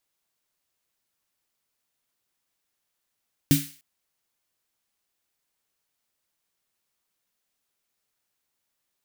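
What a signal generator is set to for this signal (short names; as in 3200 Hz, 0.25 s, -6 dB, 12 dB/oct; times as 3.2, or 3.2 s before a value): snare drum length 0.30 s, tones 150 Hz, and 280 Hz, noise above 1800 Hz, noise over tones -8 dB, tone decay 0.26 s, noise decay 0.45 s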